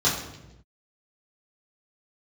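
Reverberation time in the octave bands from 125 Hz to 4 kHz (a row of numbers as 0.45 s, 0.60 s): 1.4 s, 1.2 s, 1.0 s, 0.85 s, 0.80 s, 0.75 s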